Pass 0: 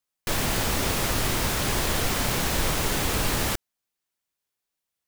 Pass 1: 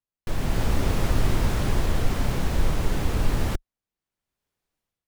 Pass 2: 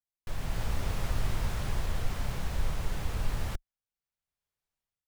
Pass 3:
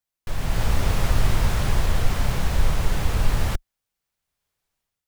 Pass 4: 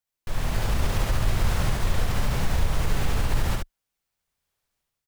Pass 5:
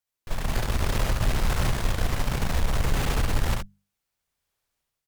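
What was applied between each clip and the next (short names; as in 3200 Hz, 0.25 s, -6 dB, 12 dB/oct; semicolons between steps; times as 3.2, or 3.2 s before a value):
tilt -2.5 dB/oct; AGC gain up to 14 dB; gain -8.5 dB
bell 300 Hz -8.5 dB 1.3 oct; gain -7.5 dB
AGC gain up to 3 dB; gain +7.5 dB
limiter -14 dBFS, peak gain reduction 7 dB; on a send: echo 70 ms -3 dB; on the sum: gain -1.5 dB
added harmonics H 6 -20 dB, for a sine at -10.5 dBFS; notches 50/100/150/200 Hz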